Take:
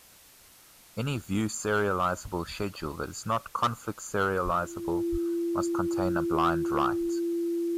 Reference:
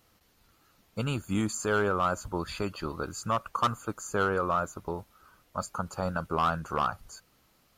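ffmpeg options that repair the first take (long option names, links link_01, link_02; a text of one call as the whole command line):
ffmpeg -i in.wav -filter_complex "[0:a]bandreject=frequency=340:width=30,asplit=3[link_01][link_02][link_03];[link_01]afade=type=out:start_time=4.44:duration=0.02[link_04];[link_02]highpass=frequency=140:width=0.5412,highpass=frequency=140:width=1.3066,afade=type=in:start_time=4.44:duration=0.02,afade=type=out:start_time=4.56:duration=0.02[link_05];[link_03]afade=type=in:start_time=4.56:duration=0.02[link_06];[link_04][link_05][link_06]amix=inputs=3:normalize=0,asplit=3[link_07][link_08][link_09];[link_07]afade=type=out:start_time=5.11:duration=0.02[link_10];[link_08]highpass=frequency=140:width=0.5412,highpass=frequency=140:width=1.3066,afade=type=in:start_time=5.11:duration=0.02,afade=type=out:start_time=5.23:duration=0.02[link_11];[link_09]afade=type=in:start_time=5.23:duration=0.02[link_12];[link_10][link_11][link_12]amix=inputs=3:normalize=0,afftdn=noise_reduction=11:noise_floor=-55" out.wav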